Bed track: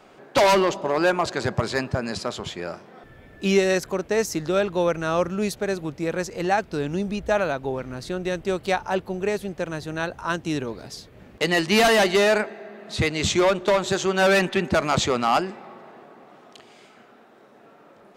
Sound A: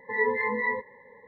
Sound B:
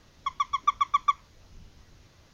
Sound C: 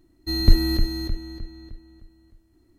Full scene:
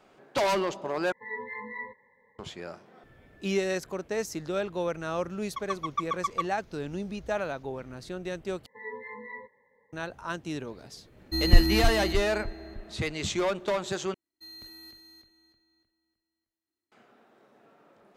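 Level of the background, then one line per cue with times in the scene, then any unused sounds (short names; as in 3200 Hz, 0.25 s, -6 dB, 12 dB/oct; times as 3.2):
bed track -8.5 dB
1.12 replace with A -10 dB + bell 460 Hz -5 dB 1.2 oct
5.3 add B -6.5 dB
8.66 replace with A -14.5 dB
11.05 add C -2.5 dB
14.14 replace with C -17 dB + HPF 1500 Hz 6 dB/oct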